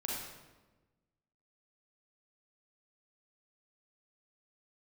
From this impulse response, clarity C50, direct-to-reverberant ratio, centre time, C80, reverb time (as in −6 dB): −1.0 dB, −4.0 dB, 77 ms, 2.5 dB, 1.2 s